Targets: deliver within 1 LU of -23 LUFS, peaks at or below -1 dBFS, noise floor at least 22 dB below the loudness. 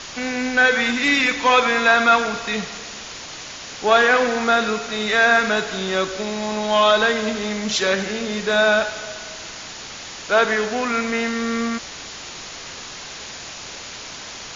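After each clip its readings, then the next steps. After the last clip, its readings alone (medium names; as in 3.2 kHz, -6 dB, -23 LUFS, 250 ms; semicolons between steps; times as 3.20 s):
noise floor -36 dBFS; noise floor target -41 dBFS; loudness -18.5 LUFS; peak level -3.0 dBFS; loudness target -23.0 LUFS
-> noise print and reduce 6 dB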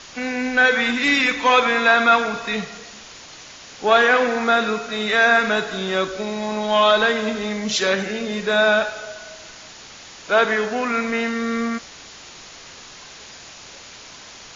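noise floor -42 dBFS; loudness -19.0 LUFS; peak level -3.0 dBFS; loudness target -23.0 LUFS
-> trim -4 dB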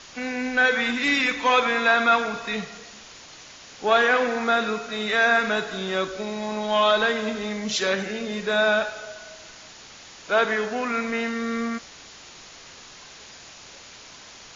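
loudness -23.0 LUFS; peak level -7.0 dBFS; noise floor -46 dBFS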